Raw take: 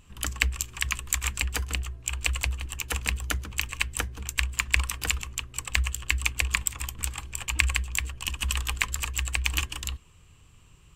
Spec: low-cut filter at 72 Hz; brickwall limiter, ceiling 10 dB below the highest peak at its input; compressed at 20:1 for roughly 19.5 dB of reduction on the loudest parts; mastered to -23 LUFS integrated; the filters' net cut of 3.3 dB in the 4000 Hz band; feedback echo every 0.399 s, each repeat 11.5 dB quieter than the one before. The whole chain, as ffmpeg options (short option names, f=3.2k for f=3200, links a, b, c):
-af "highpass=72,equalizer=f=4k:t=o:g=-5,acompressor=threshold=-40dB:ratio=20,alimiter=level_in=5.5dB:limit=-24dB:level=0:latency=1,volume=-5.5dB,aecho=1:1:399|798|1197:0.266|0.0718|0.0194,volume=25dB"